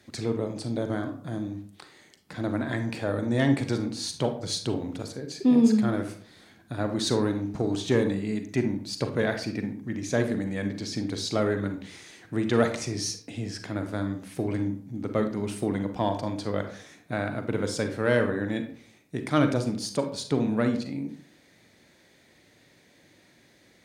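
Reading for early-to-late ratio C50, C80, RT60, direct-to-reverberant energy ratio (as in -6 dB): 9.0 dB, 13.5 dB, 0.55 s, 6.5 dB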